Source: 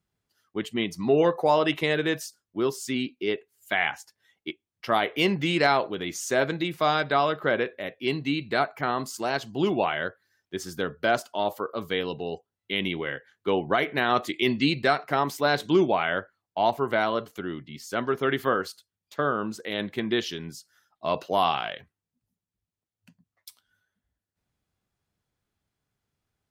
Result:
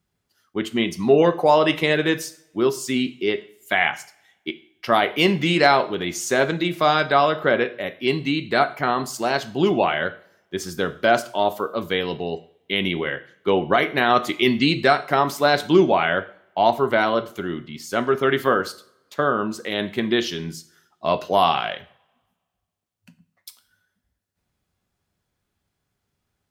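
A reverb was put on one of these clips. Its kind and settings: two-slope reverb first 0.47 s, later 1.6 s, from -25 dB, DRR 10.5 dB; gain +5 dB

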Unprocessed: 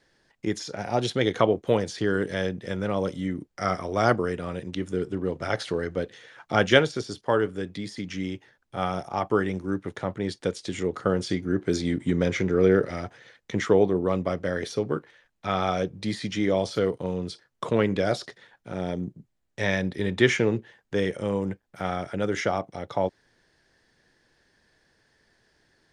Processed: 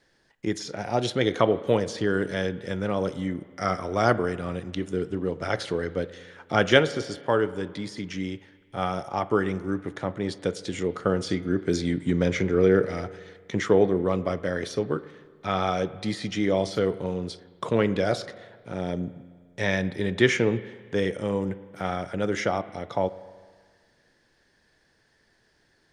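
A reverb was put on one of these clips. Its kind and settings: spring tank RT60 1.7 s, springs 34/52 ms, chirp 55 ms, DRR 15.5 dB

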